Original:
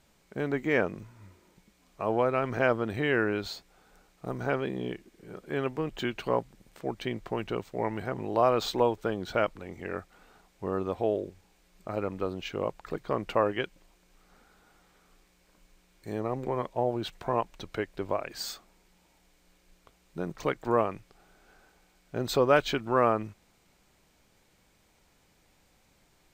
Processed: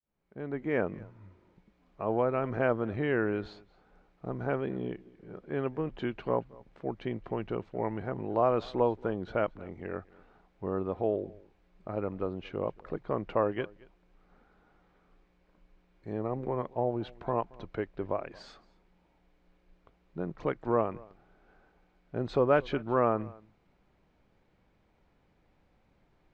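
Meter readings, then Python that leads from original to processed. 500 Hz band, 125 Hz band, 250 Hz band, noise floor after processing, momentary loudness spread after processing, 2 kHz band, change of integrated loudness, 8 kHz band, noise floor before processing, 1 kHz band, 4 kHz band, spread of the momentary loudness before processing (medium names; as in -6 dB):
-2.0 dB, -0.5 dB, -1.0 dB, -69 dBFS, 15 LU, -6.0 dB, -2.0 dB, under -20 dB, -66 dBFS, -3.5 dB, -12.0 dB, 14 LU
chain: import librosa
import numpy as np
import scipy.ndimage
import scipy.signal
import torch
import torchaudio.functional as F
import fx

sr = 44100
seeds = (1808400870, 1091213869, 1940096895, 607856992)

y = fx.fade_in_head(x, sr, length_s=0.87)
y = fx.spacing_loss(y, sr, db_at_10k=34)
y = y + 10.0 ** (-23.5 / 20.0) * np.pad(y, (int(226 * sr / 1000.0), 0))[:len(y)]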